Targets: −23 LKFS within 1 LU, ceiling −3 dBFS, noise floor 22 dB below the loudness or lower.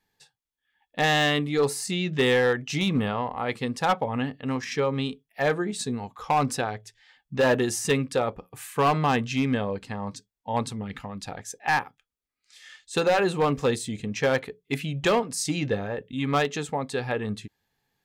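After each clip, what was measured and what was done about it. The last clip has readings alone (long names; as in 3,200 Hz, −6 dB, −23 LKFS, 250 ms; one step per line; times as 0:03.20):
share of clipped samples 0.9%; peaks flattened at −16.0 dBFS; integrated loudness −26.0 LKFS; sample peak −16.0 dBFS; target loudness −23.0 LKFS
→ clipped peaks rebuilt −16 dBFS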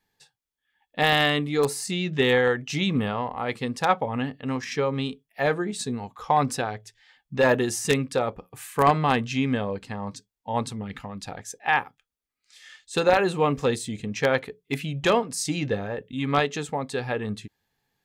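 share of clipped samples 0.0%; integrated loudness −25.5 LKFS; sample peak −7.0 dBFS; target loudness −23.0 LKFS
→ level +2.5 dB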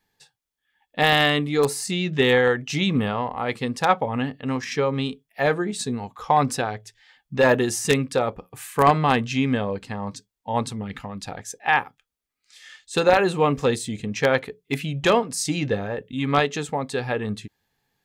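integrated loudness −23.0 LKFS; sample peak −4.5 dBFS; background noise floor −81 dBFS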